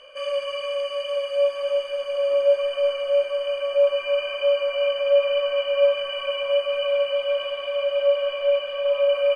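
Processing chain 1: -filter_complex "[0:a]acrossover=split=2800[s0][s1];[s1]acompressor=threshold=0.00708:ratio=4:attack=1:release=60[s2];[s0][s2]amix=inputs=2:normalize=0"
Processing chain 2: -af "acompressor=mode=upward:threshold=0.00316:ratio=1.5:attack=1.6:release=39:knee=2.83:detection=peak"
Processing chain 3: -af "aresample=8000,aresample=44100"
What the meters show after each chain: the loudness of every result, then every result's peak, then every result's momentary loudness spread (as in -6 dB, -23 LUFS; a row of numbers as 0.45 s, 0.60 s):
-23.0 LUFS, -23.0 LUFS, -23.0 LUFS; -9.5 dBFS, -9.0 dBFS, -9.0 dBFS; 7 LU, 7 LU, 7 LU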